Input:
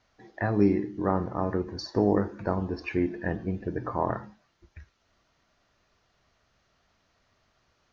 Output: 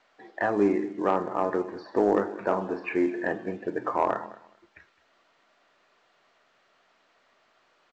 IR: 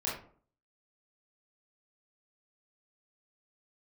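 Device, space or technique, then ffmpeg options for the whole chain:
telephone: -filter_complex "[0:a]acrossover=split=2600[link_01][link_02];[link_02]acompressor=threshold=-59dB:ratio=4:attack=1:release=60[link_03];[link_01][link_03]amix=inputs=2:normalize=0,equalizer=frequency=3900:width_type=o:width=1.2:gain=2,asettb=1/sr,asplit=3[link_04][link_05][link_06];[link_04]atrim=end=2.314[link_07];[link_05]atrim=start=2.31:end=3.32,asetpts=PTS-STARTPTS,afade=type=in:duration=0.004:curve=qsin,afade=type=out:start_time=1.006:duration=0.004:curve=qsin,asplit=2[link_08][link_09];[link_09]adelay=37,volume=-9dB[link_10];[link_08][link_10]amix=inputs=2:normalize=0,atrim=end_sample=44541[link_11];[link_06]atrim=start=3.316[link_12];[link_07][link_11]acrossfade=duration=0.004:curve1=hsin:curve2=qsin[link_13];[link_13][link_12]acrossfade=duration=0.004:curve1=qsin:curve2=hsin,highpass=370,lowpass=3100,aecho=1:1:210|420:0.112|0.0191,asoftclip=type=tanh:threshold=-16.5dB,volume=5.5dB" -ar 16000 -c:a pcm_mulaw

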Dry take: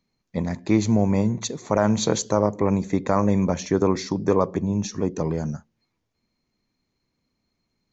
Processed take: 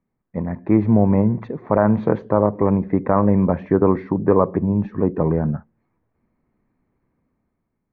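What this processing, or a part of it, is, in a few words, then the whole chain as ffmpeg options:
action camera in a waterproof case: -af "lowpass=frequency=1800:width=0.5412,lowpass=frequency=1800:width=1.3066,highshelf=frequency=6300:gain=-10,bandreject=frequency=1400:width=24,dynaudnorm=framelen=150:gausssize=9:maxgain=8dB" -ar 16000 -c:a aac -b:a 64k

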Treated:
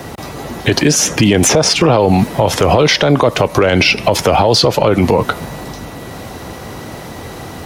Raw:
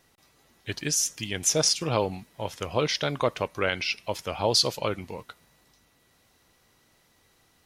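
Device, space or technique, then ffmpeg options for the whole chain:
mastering chain: -filter_complex "[0:a]highpass=55,equalizer=frequency=750:width_type=o:width=0.77:gain=2.5,acrossover=split=220|680|3200[link_01][link_02][link_03][link_04];[link_01]acompressor=threshold=-47dB:ratio=4[link_05];[link_02]acompressor=threshold=-36dB:ratio=4[link_06];[link_03]acompressor=threshold=-37dB:ratio=4[link_07];[link_04]acompressor=threshold=-40dB:ratio=4[link_08];[link_05][link_06][link_07][link_08]amix=inputs=4:normalize=0,acompressor=threshold=-37dB:ratio=2.5,asoftclip=type=tanh:threshold=-27dB,tiltshelf=frequency=1300:gain=6.5,alimiter=level_in=34.5dB:limit=-1dB:release=50:level=0:latency=1,volume=-1dB"

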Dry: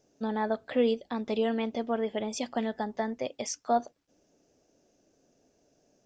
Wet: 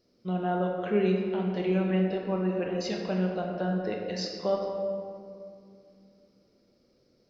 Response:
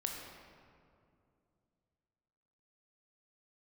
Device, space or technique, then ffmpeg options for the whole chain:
slowed and reverbed: -filter_complex "[0:a]asetrate=36603,aresample=44100[link_01];[1:a]atrim=start_sample=2205[link_02];[link_01][link_02]afir=irnorm=-1:irlink=0"

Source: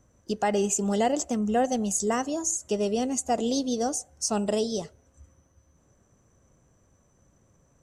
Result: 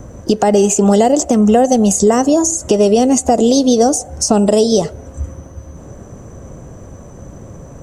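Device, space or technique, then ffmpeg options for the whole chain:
mastering chain: -filter_complex "[0:a]equalizer=frequency=600:width_type=o:width=1.7:gain=3.5,acrossover=split=650|4900[link_01][link_02][link_03];[link_01]acompressor=threshold=-36dB:ratio=4[link_04];[link_02]acompressor=threshold=-40dB:ratio=4[link_05];[link_03]acompressor=threshold=-34dB:ratio=4[link_06];[link_04][link_05][link_06]amix=inputs=3:normalize=0,acompressor=threshold=-42dB:ratio=1.5,tiltshelf=frequency=850:gain=4.5,alimiter=level_in=26dB:limit=-1dB:release=50:level=0:latency=1,volume=-1dB"

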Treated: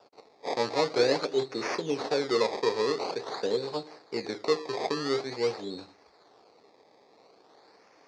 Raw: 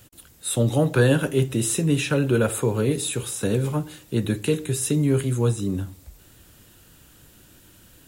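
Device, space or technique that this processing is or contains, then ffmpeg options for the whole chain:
circuit-bent sampling toy: -af "acrusher=samples=21:mix=1:aa=0.000001:lfo=1:lforange=21:lforate=0.47,highpass=410,equalizer=frequency=440:width_type=q:width=4:gain=8,equalizer=frequency=780:width_type=q:width=4:gain=5,equalizer=frequency=1500:width_type=q:width=4:gain=-5,equalizer=frequency=3000:width_type=q:width=4:gain=-9,equalizer=frequency=4400:width_type=q:width=4:gain=10,lowpass=frequency=5900:width=0.5412,lowpass=frequency=5900:width=1.3066,volume=-5dB"

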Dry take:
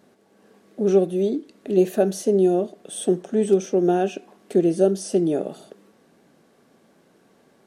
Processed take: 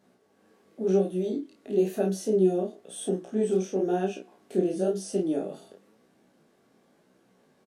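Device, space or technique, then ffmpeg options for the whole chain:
double-tracked vocal: -filter_complex "[0:a]asplit=2[link_01][link_02];[link_02]adelay=32,volume=-3dB[link_03];[link_01][link_03]amix=inputs=2:normalize=0,flanger=delay=15:depth=7.2:speed=0.97,volume=-5dB"

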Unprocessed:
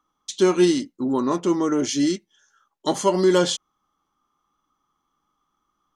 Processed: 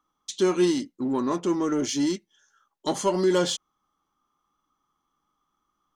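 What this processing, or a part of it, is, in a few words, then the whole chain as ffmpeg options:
parallel distortion: -filter_complex "[0:a]asplit=2[link_01][link_02];[link_02]asoftclip=type=hard:threshold=-23dB,volume=-8dB[link_03];[link_01][link_03]amix=inputs=2:normalize=0,volume=-5.5dB"

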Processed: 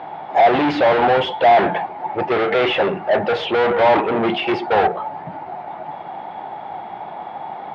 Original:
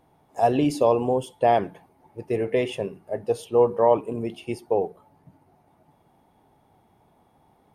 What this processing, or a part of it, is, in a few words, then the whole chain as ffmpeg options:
overdrive pedal into a guitar cabinet: -filter_complex "[0:a]asplit=2[link_01][link_02];[link_02]highpass=frequency=720:poles=1,volume=39dB,asoftclip=type=tanh:threshold=-6.5dB[link_03];[link_01][link_03]amix=inputs=2:normalize=0,lowpass=frequency=2500:poles=1,volume=-6dB,highpass=110,equalizer=frequency=130:width_type=q:width=4:gain=-4,equalizer=frequency=260:width_type=q:width=4:gain=-8,equalizer=frequency=440:width_type=q:width=4:gain=-7,equalizer=frequency=790:width_type=q:width=4:gain=6,equalizer=frequency=1100:width_type=q:width=4:gain=-3,equalizer=frequency=2700:width_type=q:width=4:gain=-3,lowpass=frequency=3500:width=0.5412,lowpass=frequency=3500:width=1.3066"

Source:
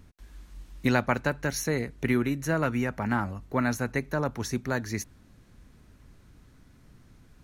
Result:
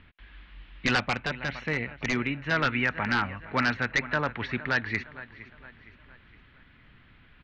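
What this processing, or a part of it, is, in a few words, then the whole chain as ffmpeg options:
synthesiser wavefolder: -filter_complex "[0:a]firequalizer=gain_entry='entry(410,0);entry(1800,14);entry(3100,14);entry(6100,-20)':delay=0.05:min_phase=1,aecho=1:1:463|926|1389|1852:0.133|0.0587|0.0258|0.0114,aeval=exprs='0.237*(abs(mod(val(0)/0.237+3,4)-2)-1)':channel_layout=same,lowpass=frequency=5200:width=0.5412,lowpass=frequency=5200:width=1.3066,asettb=1/sr,asplit=3[link_01][link_02][link_03];[link_01]atrim=end=0.994[link_04];[link_02]atrim=start=0.99:end=2.51,asetpts=PTS-STARTPTS,afade=type=in:duration=0.004:curve=qsin,afade=type=out:start_time=1.516:duration=0.004:curve=qsin,equalizer=frequency=400:width_type=o:width=0.67:gain=-3,equalizer=frequency=1600:width_type=o:width=0.67:gain=-7,equalizer=frequency=4000:width_type=o:width=0.67:gain=-6[link_05];[link_03]atrim=start=2.506[link_06];[link_04][link_05]acrossfade=duration=0.004:curve1=hsin:curve2=qsin[link_07];[link_07][link_06]acrossfade=duration=0.004:curve1=qsin:curve2=hsin,volume=-3dB"

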